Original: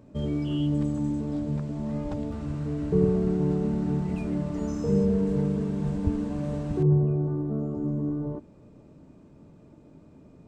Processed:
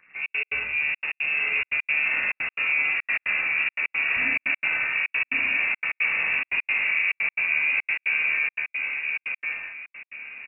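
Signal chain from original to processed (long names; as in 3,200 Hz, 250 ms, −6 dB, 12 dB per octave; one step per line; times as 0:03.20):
leveller curve on the samples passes 2
high-pass filter 78 Hz 6 dB per octave
parametric band 580 Hz −2.5 dB
convolution reverb, pre-delay 3 ms, DRR −7.5 dB
gate on every frequency bin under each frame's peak −10 dB weak
reversed playback
downward compressor, threshold −24 dBFS, peak gain reduction 9 dB
reversed playback
voice inversion scrambler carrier 2,700 Hz
low-shelf EQ 110 Hz −6 dB
repeating echo 1,061 ms, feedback 28%, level −3 dB
gate pattern "xxx.x.xx" 175 BPM −60 dB
level +1.5 dB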